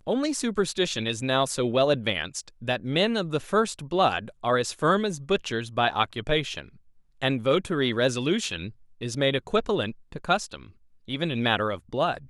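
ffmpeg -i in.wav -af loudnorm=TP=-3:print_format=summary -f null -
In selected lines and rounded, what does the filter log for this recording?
Input Integrated:    -26.2 LUFS
Input True Peak:      -6.9 dBTP
Input LRA:             2.3 LU
Input Threshold:     -36.6 LUFS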